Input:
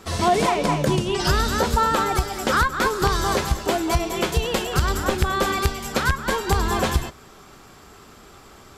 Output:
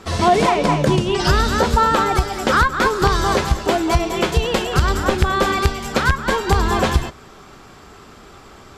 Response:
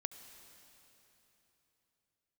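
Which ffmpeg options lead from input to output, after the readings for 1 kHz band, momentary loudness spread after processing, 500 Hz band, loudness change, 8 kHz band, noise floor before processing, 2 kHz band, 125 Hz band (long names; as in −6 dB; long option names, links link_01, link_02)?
+4.5 dB, 4 LU, +4.5 dB, +4.0 dB, 0.0 dB, −47 dBFS, +4.0 dB, +4.5 dB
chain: -af "highshelf=frequency=9100:gain=-12,volume=4.5dB"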